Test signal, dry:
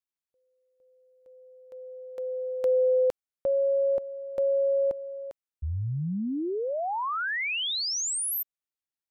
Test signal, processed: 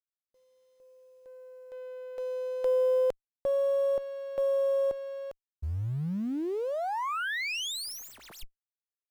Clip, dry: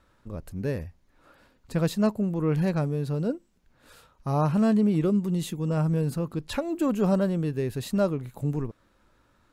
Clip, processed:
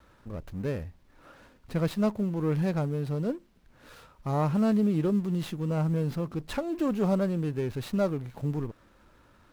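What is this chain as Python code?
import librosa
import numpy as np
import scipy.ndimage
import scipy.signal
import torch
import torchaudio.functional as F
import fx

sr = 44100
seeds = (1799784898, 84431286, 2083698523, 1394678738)

y = fx.law_mismatch(x, sr, coded='mu')
y = fx.vibrato(y, sr, rate_hz=0.36, depth_cents=10.0)
y = fx.running_max(y, sr, window=5)
y = F.gain(torch.from_numpy(y), -3.0).numpy()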